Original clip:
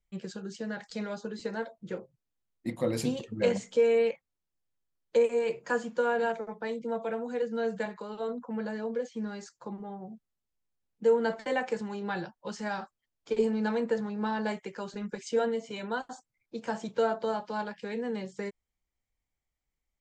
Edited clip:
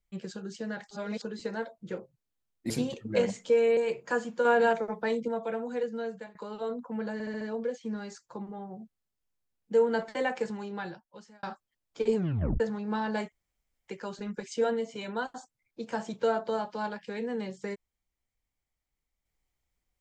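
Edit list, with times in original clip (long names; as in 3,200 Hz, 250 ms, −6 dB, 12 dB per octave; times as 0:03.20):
0:00.91–0:01.22: reverse
0:02.70–0:02.97: remove
0:04.04–0:05.36: remove
0:06.04–0:06.87: clip gain +5 dB
0:07.38–0:07.94: fade out, to −18.5 dB
0:08.72: stutter 0.07 s, 5 plays
0:11.80–0:12.74: fade out
0:13.46: tape stop 0.45 s
0:14.63: splice in room tone 0.56 s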